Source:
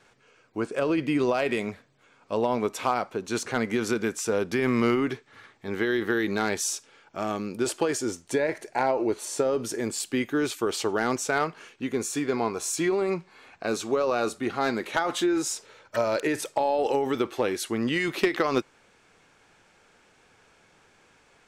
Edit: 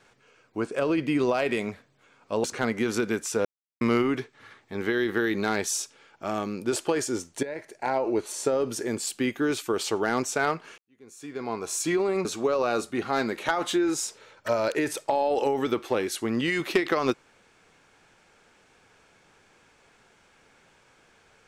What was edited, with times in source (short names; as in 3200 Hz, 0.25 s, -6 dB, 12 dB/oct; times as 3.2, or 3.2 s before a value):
2.44–3.37 cut
4.38–4.74 mute
8.36–9.07 fade in, from -12 dB
11.71–12.66 fade in quadratic
13.18–13.73 cut